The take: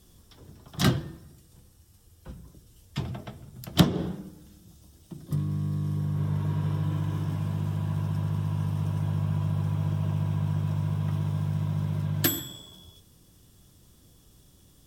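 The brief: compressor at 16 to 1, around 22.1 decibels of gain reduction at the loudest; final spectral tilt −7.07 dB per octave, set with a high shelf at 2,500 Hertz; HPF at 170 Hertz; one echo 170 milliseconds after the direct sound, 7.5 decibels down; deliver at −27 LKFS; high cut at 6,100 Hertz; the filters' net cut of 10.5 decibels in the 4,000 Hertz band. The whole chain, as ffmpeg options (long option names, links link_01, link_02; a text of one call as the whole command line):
ffmpeg -i in.wav -af "highpass=170,lowpass=6100,highshelf=frequency=2500:gain=-7.5,equalizer=frequency=4000:width_type=o:gain=-6.5,acompressor=threshold=-39dB:ratio=16,aecho=1:1:170:0.422,volume=18dB" out.wav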